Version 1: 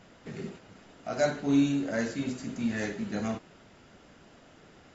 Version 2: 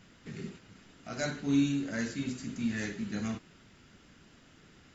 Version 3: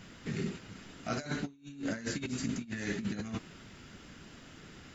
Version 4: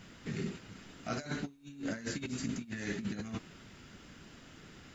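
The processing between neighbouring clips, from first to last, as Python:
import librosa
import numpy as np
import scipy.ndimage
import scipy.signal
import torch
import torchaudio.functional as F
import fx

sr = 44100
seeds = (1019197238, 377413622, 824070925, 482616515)

y1 = fx.peak_eq(x, sr, hz=650.0, db=-11.0, octaves=1.5)
y2 = fx.over_compress(y1, sr, threshold_db=-38.0, ratio=-0.5)
y2 = y2 * 10.0 ** (1.5 / 20.0)
y3 = fx.dmg_noise_colour(y2, sr, seeds[0], colour='pink', level_db=-76.0)
y3 = y3 * 10.0 ** (-2.0 / 20.0)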